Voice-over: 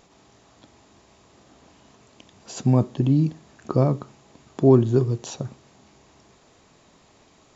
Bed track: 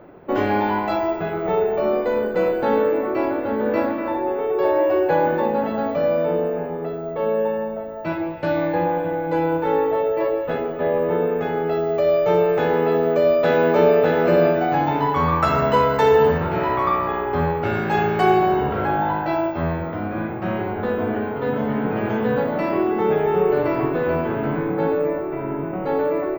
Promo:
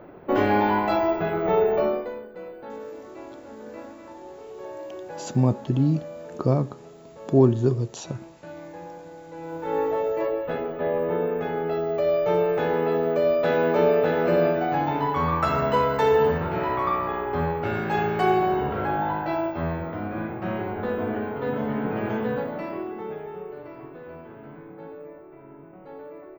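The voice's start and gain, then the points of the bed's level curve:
2.70 s, -2.0 dB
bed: 1.81 s -0.5 dB
2.27 s -19 dB
9.35 s -19 dB
9.8 s -4.5 dB
22.15 s -4.5 dB
23.55 s -20 dB

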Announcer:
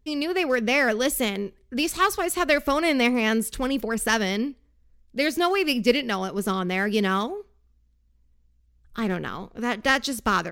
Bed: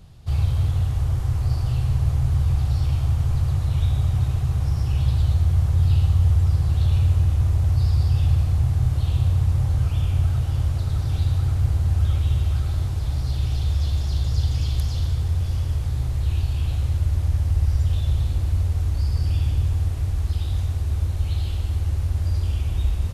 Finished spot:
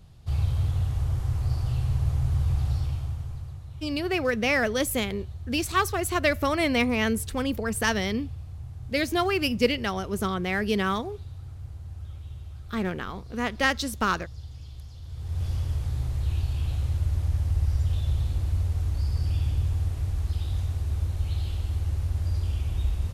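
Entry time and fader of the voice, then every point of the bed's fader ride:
3.75 s, -2.5 dB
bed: 2.71 s -4.5 dB
3.64 s -19 dB
15.02 s -19 dB
15.44 s -4.5 dB

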